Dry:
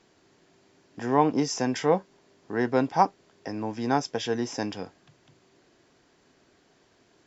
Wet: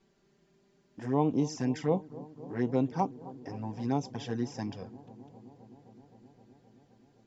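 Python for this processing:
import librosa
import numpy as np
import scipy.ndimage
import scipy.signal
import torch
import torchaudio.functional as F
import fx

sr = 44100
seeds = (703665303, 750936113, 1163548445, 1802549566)

y = fx.low_shelf(x, sr, hz=260.0, db=12.0)
y = fx.env_flanger(y, sr, rest_ms=5.2, full_db=-16.0)
y = fx.echo_bbd(y, sr, ms=260, stages=2048, feedback_pct=82, wet_db=-19)
y = F.gain(torch.from_numpy(y), -8.0).numpy()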